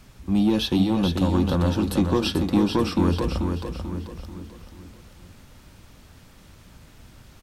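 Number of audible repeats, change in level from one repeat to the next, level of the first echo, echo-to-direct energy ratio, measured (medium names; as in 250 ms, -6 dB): 4, -7.5 dB, -6.0 dB, -5.0 dB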